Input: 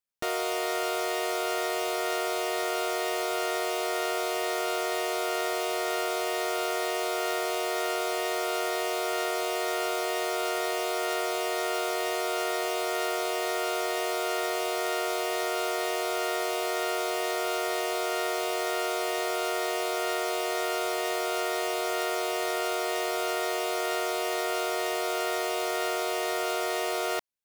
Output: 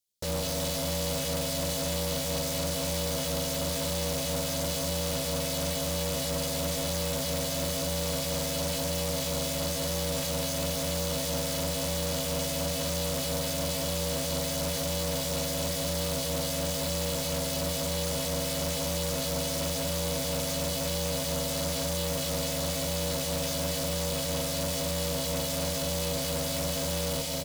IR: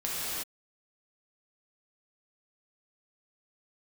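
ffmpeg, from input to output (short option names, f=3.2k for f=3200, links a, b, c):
-filter_complex "[0:a]firequalizer=gain_entry='entry(220,0);entry(380,7);entry(580,-16);entry(850,-8);entry(1200,-21);entry(2800,-13);entry(4500,5)':delay=0.05:min_phase=1,aecho=1:1:210|336|411.6|457|484.2:0.631|0.398|0.251|0.158|0.1,asoftclip=type=tanh:threshold=-24dB,flanger=delay=16:depth=3.9:speed=1,acontrast=77,asplit=2[a][b];[b]asetrate=33038,aresample=44100,atempo=1.33484,volume=0dB[c];[a][c]amix=inputs=2:normalize=0,aeval=exprs='val(0)*sin(2*PI*200*n/s)':c=same,equalizer=f=2.1k:w=2.7:g=6,bandreject=f=60:t=h:w=6,bandreject=f=120:t=h:w=6,bandreject=f=180:t=h:w=6,bandreject=f=240:t=h:w=6,bandreject=f=300:t=h:w=6,bandreject=f=360:t=h:w=6,bandreject=f=420:t=h:w=6,bandreject=f=480:t=h:w=6,asoftclip=type=hard:threshold=-27dB"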